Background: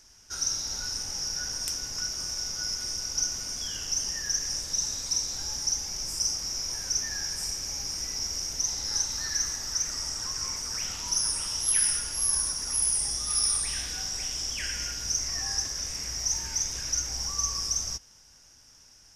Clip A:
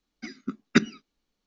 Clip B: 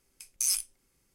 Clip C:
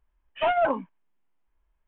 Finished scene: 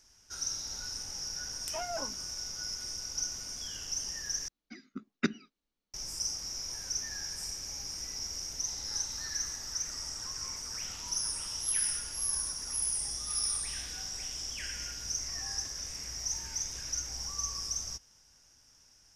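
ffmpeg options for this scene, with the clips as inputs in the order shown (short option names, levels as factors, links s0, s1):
-filter_complex "[0:a]volume=0.473,asplit=2[s0][s1];[s0]atrim=end=4.484[s2];[1:a]atrim=end=1.46,asetpts=PTS-STARTPTS,volume=0.335[s3];[s1]atrim=start=5.936[s4];[3:a]atrim=end=1.87,asetpts=PTS-STARTPTS,volume=0.168,afade=t=in:d=0.004:c=hsin,afade=t=out:st=1.866:d=0.004:c=hsin,adelay=1320[s5];[s2][s3]acrossfade=d=0.004:c1=hsin:c2=hsin[s6];[s6][s4]acrossfade=d=0.004:c1=hsin:c2=hsin[s7];[s7][s5]amix=inputs=2:normalize=0"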